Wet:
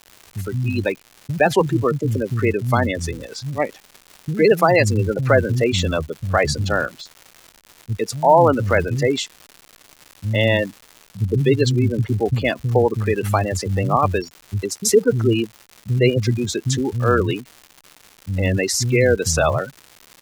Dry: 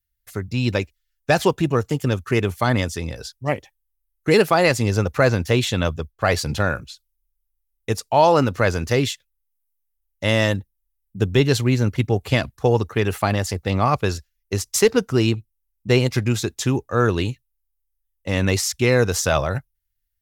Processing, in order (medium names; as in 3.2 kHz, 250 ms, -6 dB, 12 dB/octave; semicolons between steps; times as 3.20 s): spectral gate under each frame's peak -20 dB strong; bands offset in time lows, highs 110 ms, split 200 Hz; crackle 290 per s -33 dBFS; trim +2.5 dB